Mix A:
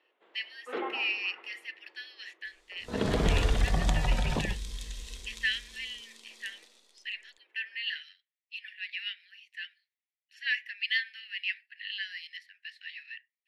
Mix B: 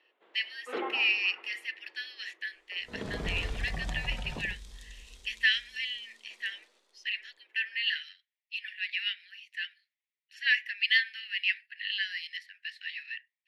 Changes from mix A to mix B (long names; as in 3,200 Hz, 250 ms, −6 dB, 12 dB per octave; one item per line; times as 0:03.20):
speech +4.5 dB
second sound −9.5 dB